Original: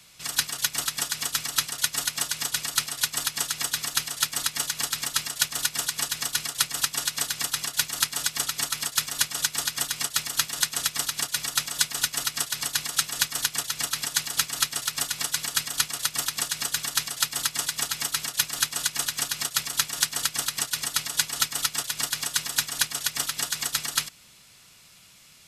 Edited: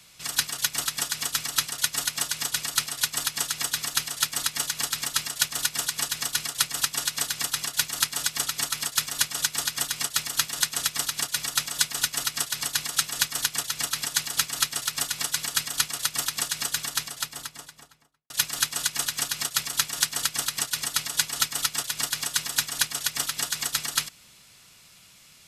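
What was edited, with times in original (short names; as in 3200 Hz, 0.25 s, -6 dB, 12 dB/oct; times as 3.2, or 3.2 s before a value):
16.67–18.3 studio fade out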